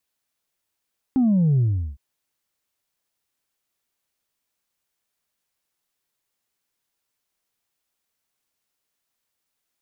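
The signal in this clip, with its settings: sub drop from 270 Hz, over 0.81 s, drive 1 dB, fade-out 0.38 s, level -15.5 dB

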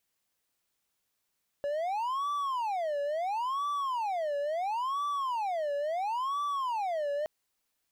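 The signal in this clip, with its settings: siren wail 570–1160 Hz 0.73/s triangle -27 dBFS 5.62 s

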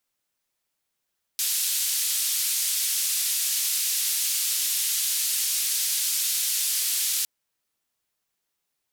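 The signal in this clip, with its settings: noise band 3500–14000 Hz, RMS -25.5 dBFS 5.86 s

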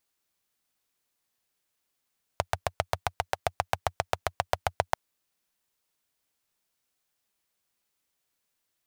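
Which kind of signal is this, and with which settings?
single-cylinder engine model, steady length 2.54 s, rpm 900, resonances 90/720 Hz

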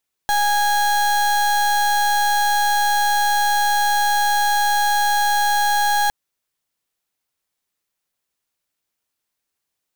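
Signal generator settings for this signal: pulse 825 Hz, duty 32% -17.5 dBFS 5.81 s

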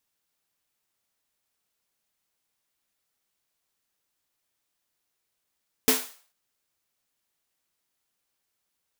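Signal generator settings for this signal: snare drum length 0.44 s, tones 260 Hz, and 440 Hz, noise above 530 Hz, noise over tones 2.5 dB, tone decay 0.25 s, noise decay 0.44 s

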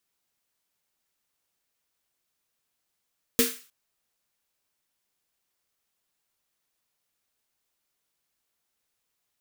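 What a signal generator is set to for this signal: snare drum length 0.31 s, tones 250 Hz, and 460 Hz, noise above 1300 Hz, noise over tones 0 dB, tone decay 0.25 s, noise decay 0.41 s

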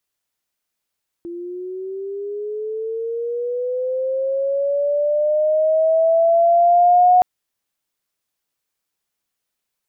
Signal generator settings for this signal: chirp linear 340 Hz -> 730 Hz -27.5 dBFS -> -8.5 dBFS 5.97 s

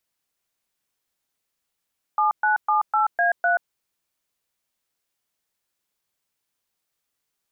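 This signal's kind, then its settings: DTMF "7978A3", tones 0.131 s, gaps 0.121 s, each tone -19.5 dBFS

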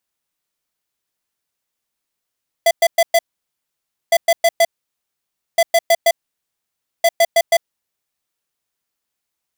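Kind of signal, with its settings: beep pattern square 672 Hz, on 0.05 s, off 0.11 s, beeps 4, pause 0.93 s, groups 4, -11.5 dBFS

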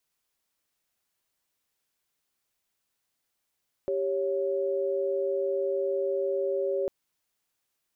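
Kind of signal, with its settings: chord G4/C#5 sine, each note -28 dBFS 3.00 s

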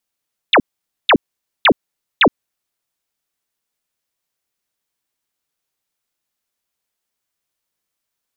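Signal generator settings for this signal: burst of laser zaps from 4100 Hz, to 190 Hz, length 0.07 s sine, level -6.5 dB, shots 4, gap 0.49 s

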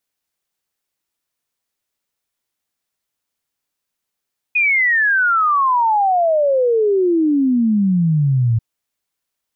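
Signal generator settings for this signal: log sweep 2500 Hz -> 110 Hz 4.04 s -12 dBFS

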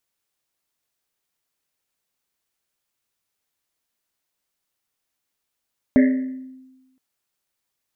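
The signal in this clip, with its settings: Risset drum length 1.02 s, pitch 260 Hz, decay 1.19 s, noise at 1900 Hz, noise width 390 Hz, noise 10%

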